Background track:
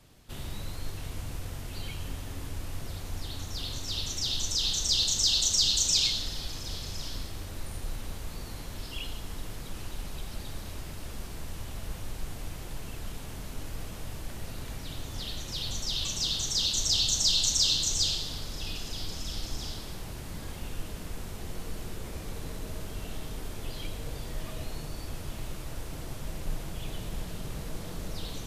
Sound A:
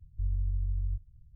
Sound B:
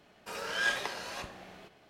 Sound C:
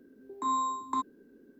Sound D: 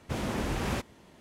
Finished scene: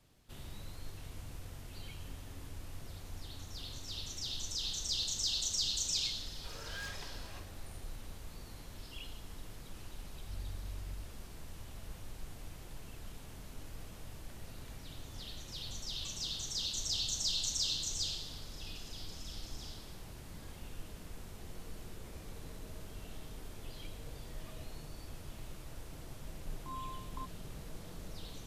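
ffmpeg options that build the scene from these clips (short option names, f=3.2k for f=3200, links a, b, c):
-filter_complex "[0:a]volume=-9.5dB[a];[2:a]aeval=exprs='0.0501*(abs(mod(val(0)/0.0501+3,4)-2)-1)':c=same[b];[3:a]lowpass=5k[c];[b]atrim=end=1.89,asetpts=PTS-STARTPTS,volume=-12.5dB,afade=t=in:d=0.004:c=hsin,afade=t=out:st=1.886:d=0.004:c=hsin,adelay=6170[d];[1:a]atrim=end=1.35,asetpts=PTS-STARTPTS,volume=-13.5dB,afade=t=in:d=0.004:c=hsin,afade=t=out:st=1.346:d=0.004:c=hsin,adelay=10070[e];[c]atrim=end=1.59,asetpts=PTS-STARTPTS,volume=-15.5dB,afade=t=in:d=0.004:c=hsin,afade=t=out:st=1.586:d=0.004:c=hsin,adelay=26240[f];[a][d][e][f]amix=inputs=4:normalize=0"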